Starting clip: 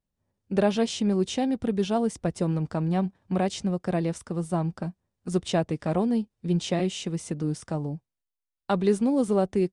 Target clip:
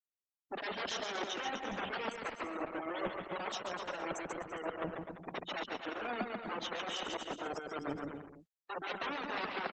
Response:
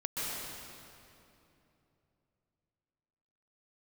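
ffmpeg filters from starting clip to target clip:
-filter_complex "[0:a]acrossover=split=1100[link_01][link_02];[link_01]aeval=exprs='(mod(16.8*val(0)+1,2)-1)/16.8':channel_layout=same[link_03];[link_03][link_02]amix=inputs=2:normalize=0,highpass=frequency=250:width=0.5412,highpass=frequency=250:width=1.3066,areverse,acompressor=threshold=-38dB:ratio=10,areverse,afftfilt=real='re*gte(hypot(re,im),0.0126)':imag='im*gte(hypot(re,im),0.0126)':win_size=1024:overlap=0.75,aecho=1:1:140|252|341.6|413.3|470.6:0.631|0.398|0.251|0.158|0.1,volume=4dB" -ar 48000 -c:a libopus -b:a 10k

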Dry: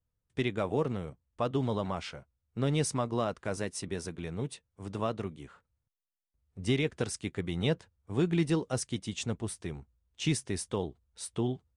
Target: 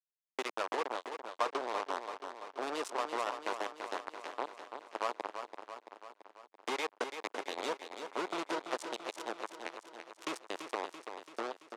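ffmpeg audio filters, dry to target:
ffmpeg -i in.wav -af "acrusher=bits=3:mix=0:aa=0.5,asoftclip=type=hard:threshold=-30.5dB,lowpass=8500,acompressor=threshold=-38dB:ratio=6,highpass=frequency=340:width=0.5412,highpass=frequency=340:width=1.3066,equalizer=frequency=1000:width_type=o:width=1.1:gain=8,aecho=1:1:336|672|1008|1344|1680|2016|2352|2688:0.398|0.239|0.143|0.086|0.0516|0.031|0.0186|0.0111,volume=7dB" out.wav

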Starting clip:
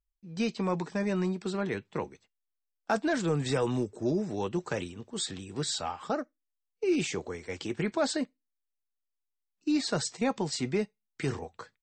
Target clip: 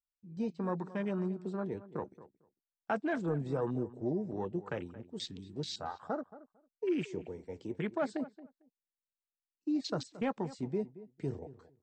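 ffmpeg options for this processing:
ffmpeg -i in.wav -filter_complex "[0:a]afwtdn=0.0158,asettb=1/sr,asplit=3[link_01][link_02][link_03];[link_01]atrim=end=3.294[link_04];[link_02]atrim=start=3.29:end=4.98,asetpts=PTS-STARTPTS,afade=type=in:duration=0.004:curve=qsin,afade=type=out:start_time=1.686:duration=0.004:curve=qsin,highshelf=frequency=5200:gain=-7.5[link_05];[link_03]atrim=start=4.976[link_06];[link_04][link_05]acrossfade=duration=0.004:curve1=hsin:curve2=qsin[link_07];[link_07][link_06]acrossfade=duration=0.004:curve1=qsin:curve2=hsin,asplit=2[link_08][link_09];[link_09]adelay=225,lowpass=frequency=1800:poles=1,volume=-16dB,asplit=2[link_10][link_11];[link_11]adelay=225,lowpass=frequency=1800:poles=1,volume=0.16[link_12];[link_08][link_10][link_12]amix=inputs=3:normalize=0,volume=-5dB" out.wav

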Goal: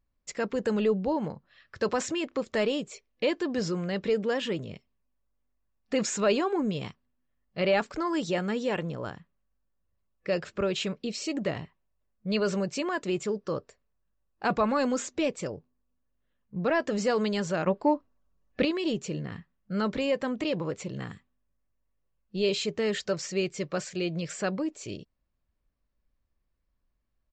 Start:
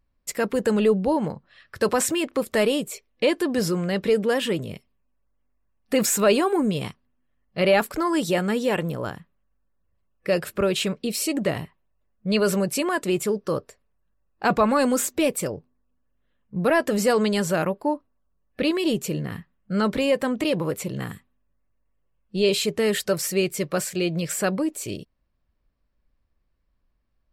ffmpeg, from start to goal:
ffmpeg -i in.wav -filter_complex "[0:a]aresample=16000,aresample=44100,asettb=1/sr,asplit=3[link_01][link_02][link_03];[link_01]atrim=end=17.674[link_04];[link_02]atrim=start=17.67:end=18.65,asetpts=PTS-STARTPTS,afade=type=in:duration=0.004:curve=qsin,afade=type=out:start_time=0.976:duration=0.004:curve=qsin,acontrast=65[link_05];[link_03]atrim=start=18.646[link_06];[link_04][link_05]acrossfade=duration=0.004:curve1=hsin:curve2=qsin[link_07];[link_07][link_06]acrossfade=duration=0.004:curve1=qsin:curve2=hsin,volume=-6dB" out.wav

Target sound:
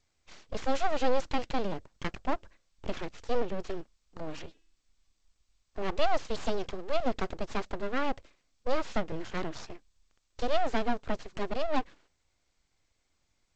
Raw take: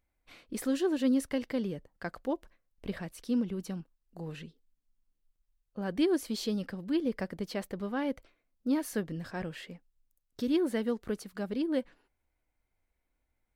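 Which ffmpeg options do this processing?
ffmpeg -i in.wav -filter_complex "[0:a]acrossover=split=330|860|2200[link_01][link_02][link_03][link_04];[link_04]asoftclip=type=tanh:threshold=-35.5dB[link_05];[link_01][link_02][link_03][link_05]amix=inputs=4:normalize=0,acontrast=28,asettb=1/sr,asplit=3[link_06][link_07][link_08];[link_06]atrim=end=4.354[link_09];[link_07]atrim=start=4.35:end=5.94,asetpts=PTS-STARTPTS,afade=type=in:duration=0.004:curve=qsin,afade=type=out:start_time=1.586:duration=0.004:curve=qsin,bandreject=frequency=325.4:width_type=h:width=4,bandreject=frequency=650.8:width_type=h:width=4,bandreject=frequency=976.2:width_type=h:width=4,bandreject=frequency=1301.6:width_type=h:width=4,bandreject=frequency=1627:width_type=h:width=4,bandreject=frequency=1952.4:width_type=h:width=4,bandreject=frequency=2277.8:width_type=h:width=4,bandreject=frequency=2603.2:width_type=h:width=4,bandreject=frequency=2928.6:width_type=h:width=4,bandreject=frequency=3254:width_type=h:width=4,bandreject=frequency=3579.4:width_type=h:width=4[link_10];[link_08]atrim=start=5.936[link_11];[link_09][link_10]acrossfade=duration=0.004:curve1=hsin:curve2=qsin[link_12];[link_12][link_11]acrossfade=duration=0.004:curve1=qsin:curve2=hsin,aeval=exprs='abs(val(0))':channel_layout=same" -ar 16000 -c:a g722 out.g722

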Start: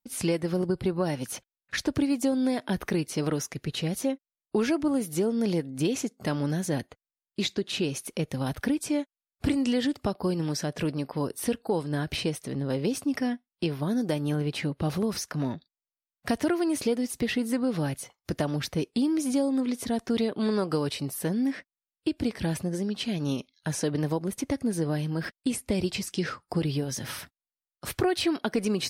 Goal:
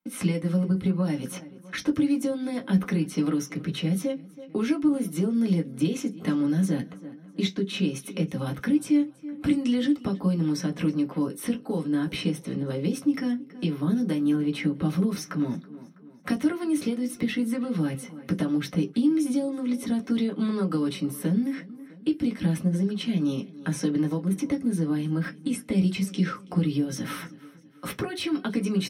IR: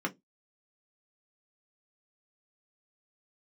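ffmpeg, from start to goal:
-filter_complex "[0:a]aecho=1:1:326|652|978:0.0708|0.0304|0.0131,acrossover=split=130|3000[link_01][link_02][link_03];[link_02]acompressor=threshold=-42dB:ratio=2[link_04];[link_01][link_04][link_03]amix=inputs=3:normalize=0[link_05];[1:a]atrim=start_sample=2205[link_06];[link_05][link_06]afir=irnorm=-1:irlink=0"

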